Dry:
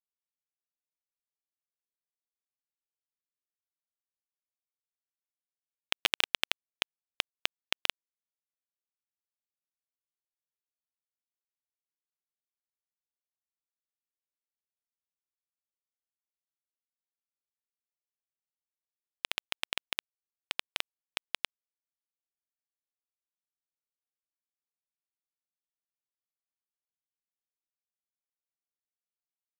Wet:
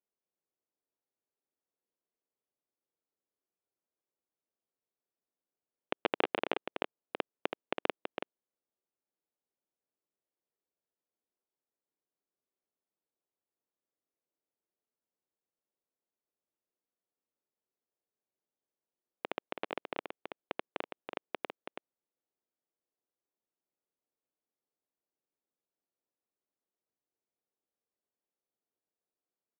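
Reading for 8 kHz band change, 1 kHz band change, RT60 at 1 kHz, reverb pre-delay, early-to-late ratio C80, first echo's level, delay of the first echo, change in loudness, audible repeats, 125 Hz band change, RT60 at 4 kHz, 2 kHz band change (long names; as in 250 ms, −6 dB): below −30 dB, +4.0 dB, no reverb audible, no reverb audible, no reverb audible, −6.5 dB, 328 ms, −6.0 dB, 1, +4.0 dB, no reverb audible, −6.0 dB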